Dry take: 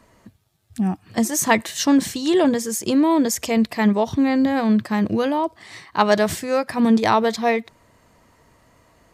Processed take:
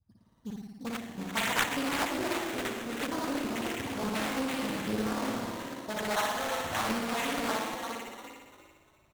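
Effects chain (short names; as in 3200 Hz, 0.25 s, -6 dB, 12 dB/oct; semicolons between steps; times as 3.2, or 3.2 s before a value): slices in reverse order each 84 ms, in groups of 5; low-pass opened by the level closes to 960 Hz, open at -15 dBFS; passive tone stack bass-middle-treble 5-5-5; dispersion highs, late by 47 ms, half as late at 1800 Hz; frequency-shifting echo 0.345 s, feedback 31%, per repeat +50 Hz, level -7 dB; spring tank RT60 1.3 s, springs 56 ms, chirp 40 ms, DRR -1.5 dB; sample-rate reducer 4900 Hz, jitter 0%; Doppler distortion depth 0.92 ms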